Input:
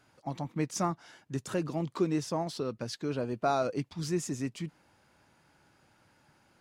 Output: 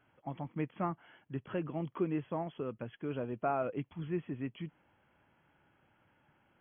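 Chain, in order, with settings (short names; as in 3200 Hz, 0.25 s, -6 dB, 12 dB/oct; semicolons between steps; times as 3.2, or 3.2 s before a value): brick-wall FIR low-pass 3400 Hz; gain -4.5 dB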